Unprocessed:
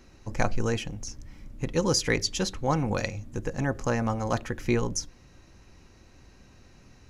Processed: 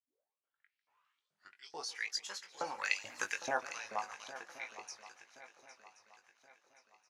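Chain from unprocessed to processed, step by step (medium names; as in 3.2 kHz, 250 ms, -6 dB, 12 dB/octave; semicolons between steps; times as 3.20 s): tape start-up on the opening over 2.23 s; Doppler pass-by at 3.23 s, 15 m/s, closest 1.3 m; spectral noise reduction 7 dB; LFO high-pass saw up 2.3 Hz 560–4400 Hz; doubling 20 ms -7 dB; on a send: shuffle delay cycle 1075 ms, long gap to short 3:1, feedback 39%, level -14.5 dB; on the sum: modulated delay 143 ms, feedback 64%, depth 144 cents, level -19 dB; trim +7 dB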